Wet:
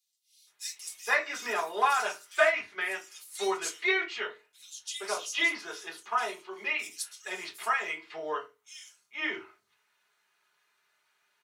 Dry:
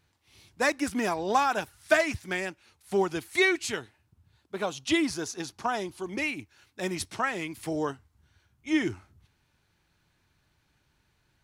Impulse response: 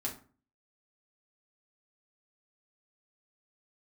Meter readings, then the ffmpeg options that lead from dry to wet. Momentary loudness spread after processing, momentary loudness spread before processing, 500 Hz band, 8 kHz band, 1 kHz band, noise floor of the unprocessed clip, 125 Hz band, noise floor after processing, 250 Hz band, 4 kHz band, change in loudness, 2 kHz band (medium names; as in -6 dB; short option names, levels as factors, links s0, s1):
15 LU, 11 LU, -4.0 dB, +0.5 dB, -0.5 dB, -72 dBFS, under -25 dB, -75 dBFS, -14.5 dB, -0.5 dB, -2.0 dB, +1.0 dB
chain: -filter_complex "[0:a]highpass=950,acrossover=split=4100[s0][s1];[s0]adelay=470[s2];[s2][s1]amix=inputs=2:normalize=0[s3];[1:a]atrim=start_sample=2205,asetrate=70560,aresample=44100[s4];[s3][s4]afir=irnorm=-1:irlink=0,volume=1.78"